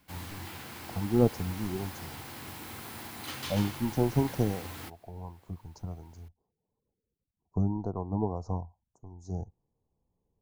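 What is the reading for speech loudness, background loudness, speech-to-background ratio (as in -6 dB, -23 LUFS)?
-32.0 LUFS, -41.5 LUFS, 9.5 dB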